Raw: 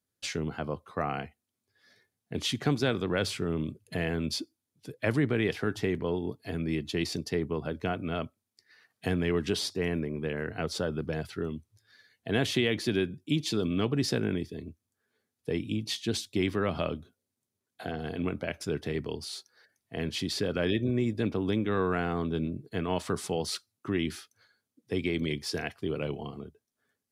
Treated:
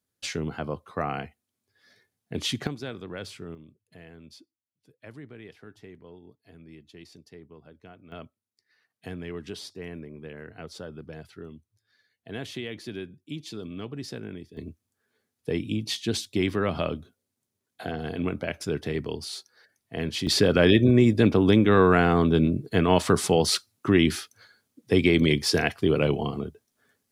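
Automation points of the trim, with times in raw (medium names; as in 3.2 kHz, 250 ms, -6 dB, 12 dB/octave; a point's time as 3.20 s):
+2 dB
from 2.67 s -8.5 dB
from 3.55 s -17.5 dB
from 8.12 s -8.5 dB
from 14.57 s +3 dB
from 20.27 s +10 dB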